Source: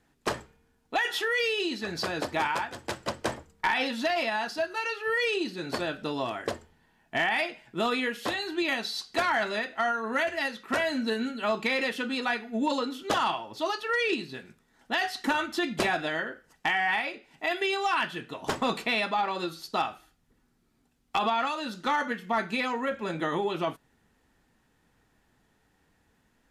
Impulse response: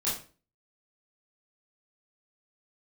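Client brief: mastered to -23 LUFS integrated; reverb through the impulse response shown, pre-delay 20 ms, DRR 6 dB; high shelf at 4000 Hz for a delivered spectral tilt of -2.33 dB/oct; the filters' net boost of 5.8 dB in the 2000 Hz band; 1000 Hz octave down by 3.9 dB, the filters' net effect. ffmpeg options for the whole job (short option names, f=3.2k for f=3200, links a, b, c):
-filter_complex "[0:a]equalizer=f=1k:t=o:g=-8,equalizer=f=2k:t=o:g=7.5,highshelf=f=4k:g=6.5,asplit=2[a][b];[1:a]atrim=start_sample=2205,adelay=20[c];[b][c]afir=irnorm=-1:irlink=0,volume=-13dB[d];[a][d]amix=inputs=2:normalize=0,volume=2dB"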